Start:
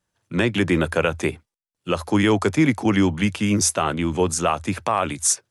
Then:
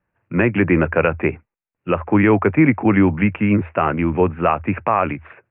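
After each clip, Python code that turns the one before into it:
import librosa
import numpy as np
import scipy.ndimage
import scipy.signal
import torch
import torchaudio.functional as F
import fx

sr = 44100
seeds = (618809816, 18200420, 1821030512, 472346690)

y = scipy.signal.sosfilt(scipy.signal.butter(12, 2600.0, 'lowpass', fs=sr, output='sos'), x)
y = F.gain(torch.from_numpy(y), 4.0).numpy()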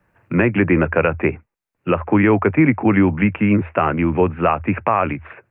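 y = fx.band_squash(x, sr, depth_pct=40)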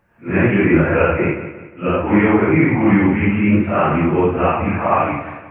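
y = fx.phase_scramble(x, sr, seeds[0], window_ms=200)
y = fx.echo_feedback(y, sr, ms=178, feedback_pct=41, wet_db=-11.5)
y = F.gain(torch.from_numpy(y), 1.5).numpy()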